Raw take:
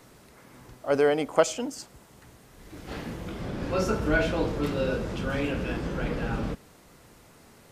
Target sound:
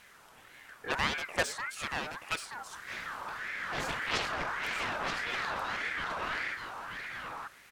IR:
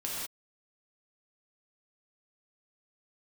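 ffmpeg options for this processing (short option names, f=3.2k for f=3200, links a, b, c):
-filter_complex "[0:a]acontrast=56,aeval=exprs='0.708*(cos(1*acos(clip(val(0)/0.708,-1,1)))-cos(1*PI/2))+0.224*(cos(7*acos(clip(val(0)/0.708,-1,1)))-cos(7*PI/2))':c=same,asoftclip=type=tanh:threshold=-9dB,asplit=2[a][b];[b]aecho=0:1:929:0.562[c];[a][c]amix=inputs=2:normalize=0,aeval=exprs='val(0)*sin(2*PI*1500*n/s+1500*0.3/1.7*sin(2*PI*1.7*n/s))':c=same,volume=-8.5dB"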